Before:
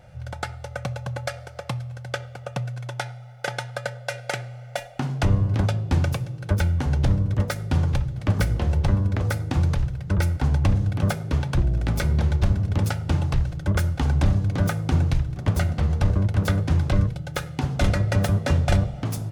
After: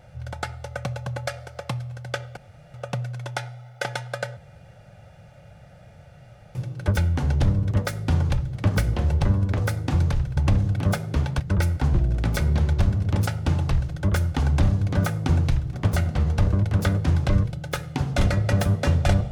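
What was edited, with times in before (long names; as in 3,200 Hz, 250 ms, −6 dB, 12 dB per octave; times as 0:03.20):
0:02.37: splice in room tone 0.37 s
0:04.00–0:06.18: fill with room tone
0:10.00–0:10.54: move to 0:11.57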